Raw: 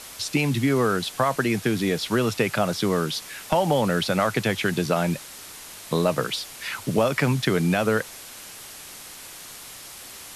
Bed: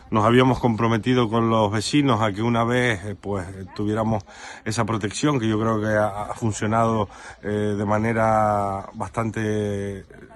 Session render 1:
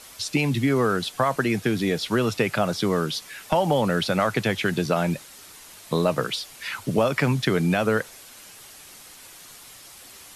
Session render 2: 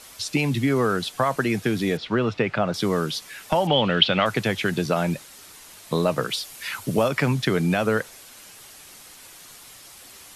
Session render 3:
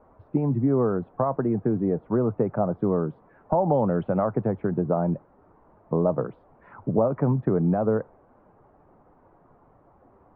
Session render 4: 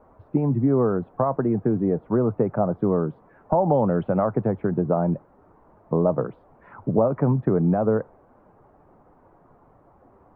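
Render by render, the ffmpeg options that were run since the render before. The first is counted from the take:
-af "afftdn=nr=6:nf=-42"
-filter_complex "[0:a]asettb=1/sr,asplit=3[s0][s1][s2];[s0]atrim=end=1.974[s3];[s1]atrim=start=1.97:end=2.74,asetpts=PTS-STARTPTS,afade=t=in:d=0.004:c=qsin,afade=t=out:st=0.766:d=0.004:c=qsin,lowpass=3000[s4];[s2]atrim=start=2.736[s5];[s3][s4]acrossfade=d=0.004:c1=hsin:c2=qsin[s6];[s6][s5]acrossfade=d=0.004:c1=qsin:c2=hsin,asettb=1/sr,asplit=3[s7][s8][s9];[s7]atrim=end=3.674[s10];[s8]atrim=start=3.67:end=4.26,asetpts=PTS-STARTPTS,afade=t=in:d=0.004:c=qsin,afade=t=out:st=0.586:d=0.004:c=qsin,lowpass=f=3100:t=q:w=5.4[s11];[s9]atrim=start=4.256[s12];[s10][s11]acrossfade=d=0.004:c1=hsin:c2=qsin[s13];[s13][s12]acrossfade=d=0.004:c1=qsin:c2=hsin,asettb=1/sr,asplit=3[s14][s15][s16];[s14]atrim=end=6.304[s17];[s15]atrim=start=6.3:end=7.08,asetpts=PTS-STARTPTS,afade=t=in:d=0.004:c=qsin,afade=t=out:st=0.776:d=0.004:c=qsin,highshelf=f=8400:g=7.5[s18];[s16]atrim=start=7.076[s19];[s17][s18]acrossfade=d=0.004:c1=hsin:c2=qsin[s20];[s20][s19]acrossfade=d=0.004:c1=qsin:c2=hsin"
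-af "lowpass=f=1000:w=0.5412,lowpass=f=1000:w=1.3066,aemphasis=mode=reproduction:type=75kf"
-af "volume=1.26"

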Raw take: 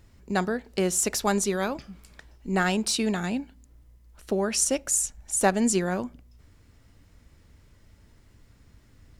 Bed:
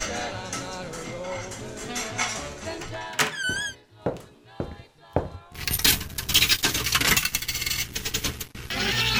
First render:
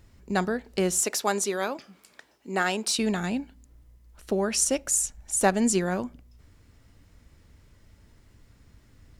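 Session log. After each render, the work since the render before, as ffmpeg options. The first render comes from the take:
-filter_complex "[0:a]asettb=1/sr,asplit=3[s0][s1][s2];[s0]atrim=end=1.024[s3];[s1]atrim=start=1.02:end=2.99,asetpts=PTS-STARTPTS,afade=t=in:d=0.004:c=qsin,afade=t=out:st=1.966:d=0.004:c=qsin,highpass=300[s4];[s2]atrim=start=2.986[s5];[s3][s4]acrossfade=d=0.004:c1=hsin:c2=qsin[s6];[s6][s5]acrossfade=d=0.004:c1=qsin:c2=hsin"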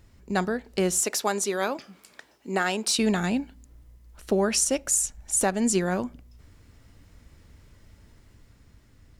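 -af "dynaudnorm=f=330:g=7:m=1.41,alimiter=limit=0.251:level=0:latency=1:release=467"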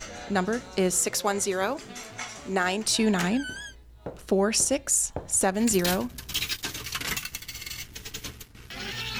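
-filter_complex "[1:a]volume=0.316[s0];[0:a][s0]amix=inputs=2:normalize=0"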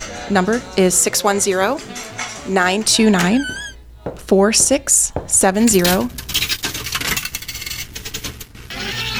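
-af "volume=3.35,alimiter=limit=0.794:level=0:latency=1"

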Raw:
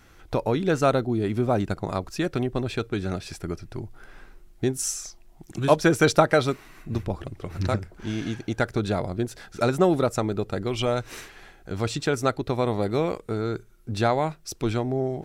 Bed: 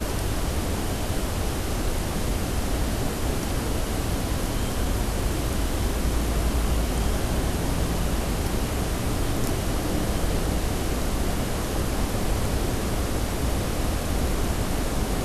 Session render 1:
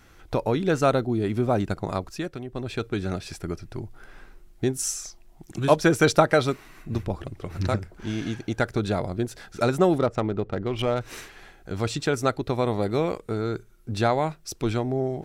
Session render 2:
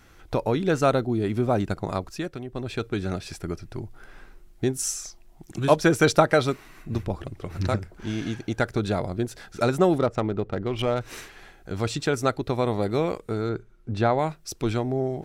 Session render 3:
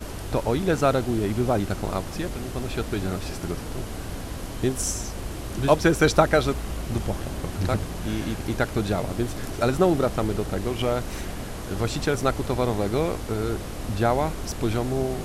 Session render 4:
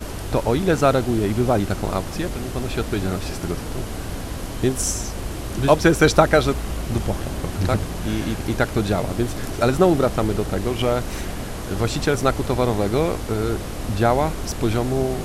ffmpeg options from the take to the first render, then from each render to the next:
-filter_complex "[0:a]asettb=1/sr,asplit=3[s0][s1][s2];[s0]atrim=end=9.984[s3];[s1]atrim=start=9.98:end=11.01,asetpts=PTS-STARTPTS,afade=t=in:d=0.004:c=qsin,afade=t=out:st=1.026:d=0.004:c=qsin,adynamicsmooth=sensitivity=2.5:basefreq=2000[s4];[s2]atrim=start=11.006[s5];[s3][s4]acrossfade=d=0.004:c1=hsin:c2=qsin[s6];[s6][s5]acrossfade=d=0.004:c1=qsin:c2=hsin,asplit=3[s7][s8][s9];[s7]atrim=end=2.4,asetpts=PTS-STARTPTS,afade=t=out:st=1.96:d=0.44:silence=0.298538[s10];[s8]atrim=start=2.4:end=2.43,asetpts=PTS-STARTPTS,volume=0.299[s11];[s9]atrim=start=2.43,asetpts=PTS-STARTPTS,afade=t=in:d=0.44:silence=0.298538[s12];[s10][s11][s12]concat=n=3:v=0:a=1"
-filter_complex "[0:a]asettb=1/sr,asplit=3[s0][s1][s2];[s0]atrim=end=13.494[s3];[s1]atrim=start=13.49:end=14.19,asetpts=PTS-STARTPTS,afade=t=in:d=0.004:c=qsin,afade=t=out:st=0.696:d=0.004:c=qsin,aemphasis=mode=reproduction:type=75fm[s4];[s2]atrim=start=14.186[s5];[s3][s4]acrossfade=d=0.004:c1=hsin:c2=qsin[s6];[s6][s5]acrossfade=d=0.004:c1=qsin:c2=hsin"
-filter_complex "[1:a]volume=0.422[s0];[0:a][s0]amix=inputs=2:normalize=0"
-af "volume=1.58,alimiter=limit=0.891:level=0:latency=1"

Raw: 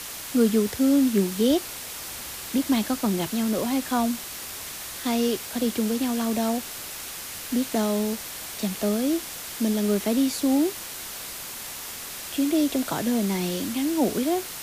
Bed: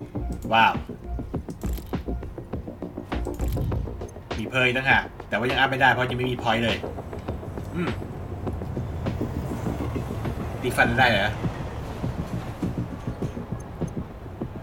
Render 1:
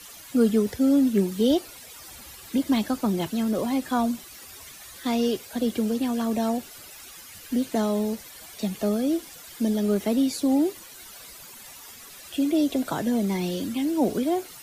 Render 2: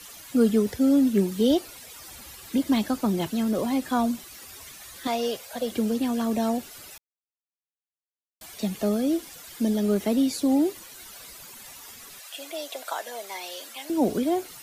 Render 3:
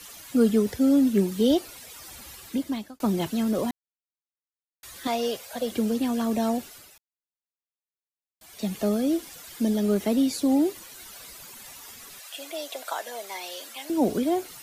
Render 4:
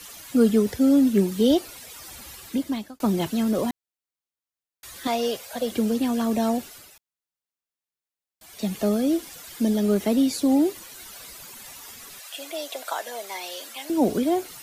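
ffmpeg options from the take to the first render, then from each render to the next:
-af "afftdn=nr=13:nf=-37"
-filter_complex "[0:a]asettb=1/sr,asplit=3[s0][s1][s2];[s0]atrim=end=5.074[s3];[s1]atrim=start=5.07:end=5.71,asetpts=PTS-STARTPTS,afade=t=in:d=0.004:c=qsin,afade=t=out:st=0.636:d=0.004:c=qsin,lowshelf=f=450:t=q:w=3:g=-7[s4];[s2]atrim=start=5.706[s5];[s3][s4]acrossfade=d=0.004:c1=hsin:c2=qsin[s6];[s6][s5]acrossfade=d=0.004:c1=qsin:c2=hsin,asettb=1/sr,asplit=3[s7][s8][s9];[s7]atrim=end=12.194[s10];[s8]atrim=start=12.19:end=13.9,asetpts=PTS-STARTPTS,afade=t=in:d=0.004:c=qsin,afade=t=out:st=1.706:d=0.004:c=qsin,highpass=f=600:w=0.5412,highpass=f=600:w=1.3066[s11];[s9]atrim=start=13.896[s12];[s10][s11]acrossfade=d=0.004:c1=hsin:c2=qsin[s13];[s13][s12]acrossfade=d=0.004:c1=qsin:c2=hsin,asplit=3[s14][s15][s16];[s14]atrim=end=6.98,asetpts=PTS-STARTPTS,afade=t=out:st=6.976:d=0.004:c=hsin[s17];[s15]atrim=start=6.98:end=8.41,asetpts=PTS-STARTPTS,volume=0[s18];[s16]atrim=start=8.41,asetpts=PTS-STARTPTS,afade=t=in:d=0.004:c=hsin[s19];[s17][s18][s19]concat=n=3:v=0:a=1"
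-filter_complex "[0:a]asplit=6[s0][s1][s2][s3][s4][s5];[s0]atrim=end=3,asetpts=PTS-STARTPTS,afade=t=out:st=2.37:d=0.63[s6];[s1]atrim=start=3:end=3.71,asetpts=PTS-STARTPTS,afade=t=in:d=0.004:c=hsin,afade=t=out:st=0.706:d=0.004:c=hsin[s7];[s2]atrim=start=3.71:end=4.83,asetpts=PTS-STARTPTS,volume=0[s8];[s3]atrim=start=4.83:end=6.94,asetpts=PTS-STARTPTS,afade=t=in:d=0.004:c=hsin,afade=t=out:st=1.78:d=0.33:silence=0.334965[s9];[s4]atrim=start=6.94:end=8.39,asetpts=PTS-STARTPTS,volume=0.335[s10];[s5]atrim=start=8.39,asetpts=PTS-STARTPTS,afade=t=in:d=0.33:silence=0.334965[s11];[s6][s7][s8][s9][s10][s11]concat=n=6:v=0:a=1"
-af "volume=1.26"

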